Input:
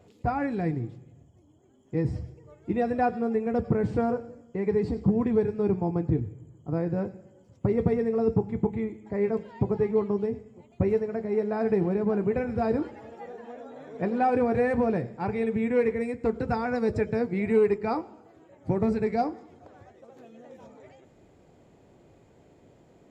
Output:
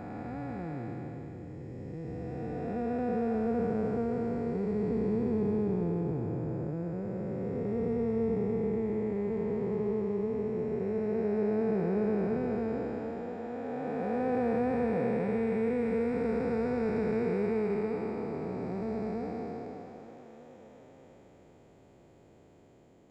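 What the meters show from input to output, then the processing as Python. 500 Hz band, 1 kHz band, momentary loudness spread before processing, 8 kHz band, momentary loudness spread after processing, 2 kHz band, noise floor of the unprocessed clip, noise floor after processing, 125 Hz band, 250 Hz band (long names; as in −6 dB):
−4.0 dB, −8.0 dB, 13 LU, can't be measured, 10 LU, −6.5 dB, −58 dBFS, −58 dBFS, −5.0 dB, −3.0 dB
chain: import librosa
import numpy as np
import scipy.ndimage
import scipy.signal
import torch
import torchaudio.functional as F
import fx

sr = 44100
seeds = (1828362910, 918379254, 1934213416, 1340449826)

y = fx.spec_blur(x, sr, span_ms=1050.0)
y = fx.echo_stepped(y, sr, ms=320, hz=430.0, octaves=1.4, feedback_pct=70, wet_db=-10.0)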